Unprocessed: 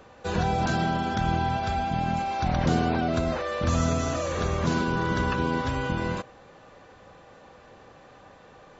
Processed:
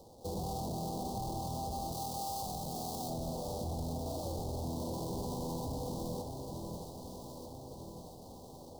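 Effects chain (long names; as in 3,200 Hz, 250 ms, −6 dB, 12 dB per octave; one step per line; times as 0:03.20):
sample-rate reduction 2,000 Hz, jitter 20%
soft clipping −28.5 dBFS, distortion −8 dB
Chebyshev band-stop filter 860–4,100 Hz, order 3
delay that swaps between a low-pass and a high-pass 621 ms, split 1,000 Hz, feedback 72%, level −6 dB
downward compressor 6 to 1, threshold −31 dBFS, peak gain reduction 4 dB
0:01.92–0:03.10: spectral tilt +1.5 dB per octave
level −3.5 dB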